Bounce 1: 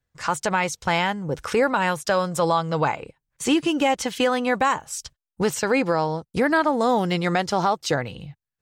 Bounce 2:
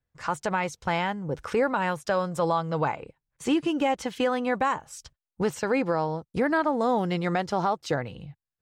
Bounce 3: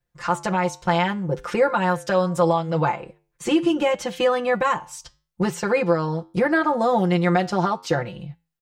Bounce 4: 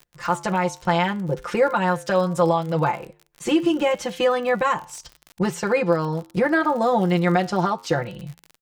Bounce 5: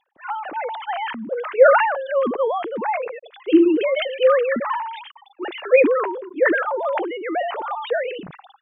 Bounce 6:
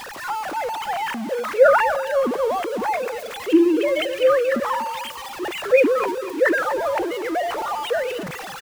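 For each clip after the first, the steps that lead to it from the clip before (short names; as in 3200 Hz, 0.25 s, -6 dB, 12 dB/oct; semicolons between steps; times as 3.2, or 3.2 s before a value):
high shelf 2800 Hz -8.5 dB; gain -3.5 dB
comb 5.7 ms, depth 97%; flange 0.72 Hz, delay 8.7 ms, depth 2.1 ms, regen -84%; gain +6.5 dB
crackle 55/s -31 dBFS
sine-wave speech; sustainer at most 52 dB/s; gain -1 dB
zero-crossing step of -27 dBFS; feedback echo 0.244 s, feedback 41%, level -14.5 dB; gain -2 dB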